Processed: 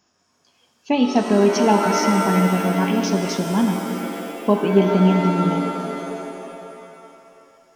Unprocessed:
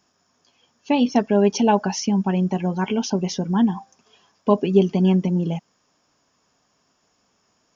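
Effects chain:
reverb with rising layers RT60 2.7 s, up +7 semitones, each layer −2 dB, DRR 5 dB

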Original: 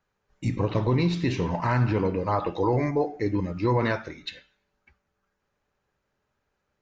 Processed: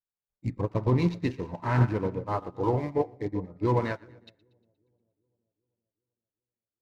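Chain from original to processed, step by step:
adaptive Wiener filter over 15 samples
echo with a time of its own for lows and highs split 650 Hz, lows 390 ms, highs 118 ms, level −11.5 dB
expander for the loud parts 2.5 to 1, over −39 dBFS
level +2.5 dB

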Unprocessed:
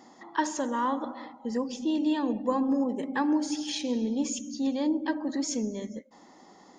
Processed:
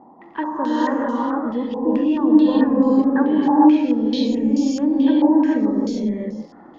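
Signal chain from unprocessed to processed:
tilt shelving filter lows +8 dB, about 790 Hz
reverb whose tail is shaped and stops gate 480 ms rising, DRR −6 dB
surface crackle 54 per second −46 dBFS
low-pass on a step sequencer 4.6 Hz 920–5,200 Hz
level −1 dB

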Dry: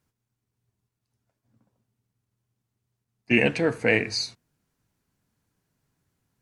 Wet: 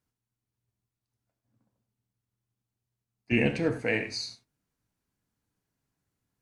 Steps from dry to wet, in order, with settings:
0:03.32–0:03.81: low-shelf EQ 200 Hz +11 dB
reverb whose tail is shaped and stops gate 120 ms flat, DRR 7.5 dB
level −7.5 dB

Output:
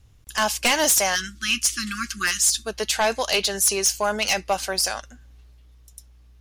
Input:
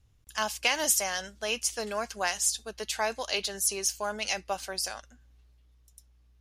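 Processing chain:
time-frequency box erased 0:01.16–0:02.67, 370–1,100 Hz
sine wavefolder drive 10 dB, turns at −9.5 dBFS
level −3.5 dB

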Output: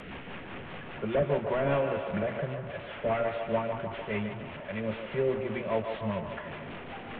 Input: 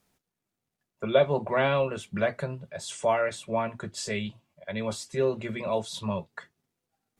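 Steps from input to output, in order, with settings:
linear delta modulator 16 kbit/s, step −33.5 dBFS
rotating-speaker cabinet horn 5 Hz
feedback echo with a band-pass in the loop 149 ms, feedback 72%, band-pass 840 Hz, level −5 dB

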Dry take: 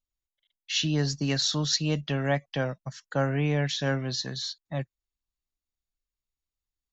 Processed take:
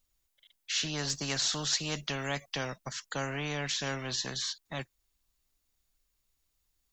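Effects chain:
high-shelf EQ 6,300 Hz +5.5 dB, from 0:01.10 +10.5 dB, from 0:02.65 +5.5 dB
every bin compressed towards the loudest bin 2 to 1
level −7 dB

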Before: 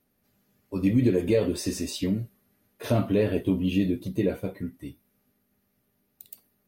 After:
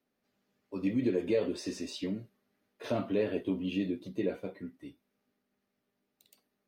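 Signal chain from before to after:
three-way crossover with the lows and the highs turned down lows −13 dB, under 200 Hz, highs −16 dB, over 6,500 Hz
level −5.5 dB

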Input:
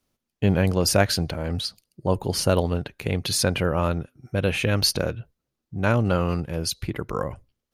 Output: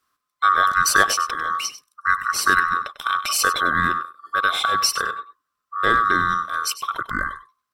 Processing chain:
neighbouring bands swapped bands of 1,000 Hz
0:04.66–0:05.13: notch comb filter 310 Hz
single-tap delay 97 ms −14 dB
level +2.5 dB

